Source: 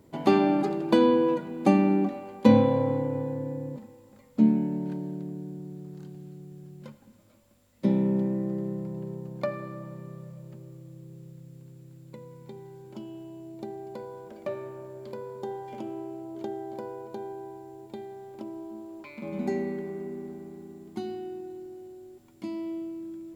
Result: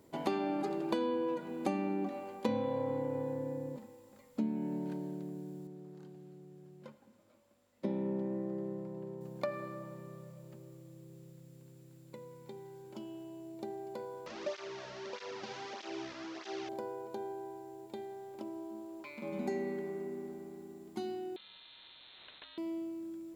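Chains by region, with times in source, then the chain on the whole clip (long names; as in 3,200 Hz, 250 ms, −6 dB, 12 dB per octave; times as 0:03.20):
0:05.67–0:09.21: high-pass filter 550 Hz 6 dB per octave + spectral tilt −3 dB per octave
0:14.26–0:16.69: linear delta modulator 32 kbit/s, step −32.5 dBFS + through-zero flanger with one copy inverted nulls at 1.6 Hz, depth 2.9 ms
0:21.36–0:22.58: downward compressor 2 to 1, threshold −52 dBFS + voice inversion scrambler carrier 3,900 Hz + every bin compressed towards the loudest bin 4 to 1
whole clip: bass and treble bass −7 dB, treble +2 dB; downward compressor 4 to 1, threshold −29 dBFS; level −2.5 dB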